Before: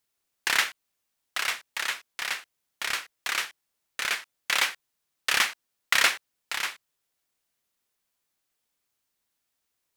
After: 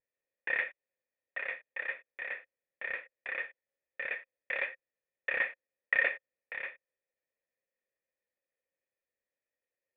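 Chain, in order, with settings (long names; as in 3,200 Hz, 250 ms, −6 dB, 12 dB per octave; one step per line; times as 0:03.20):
pitch vibrato 2 Hz 71 cents
formant resonators in series e
level +6 dB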